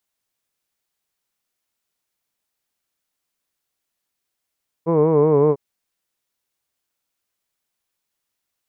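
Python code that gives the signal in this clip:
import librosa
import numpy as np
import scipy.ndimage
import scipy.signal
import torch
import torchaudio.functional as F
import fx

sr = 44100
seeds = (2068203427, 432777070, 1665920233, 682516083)

y = fx.vowel(sr, seeds[0], length_s=0.7, word='hood', hz=161.0, glide_st=-2.0, vibrato_hz=5.3, vibrato_st=0.9)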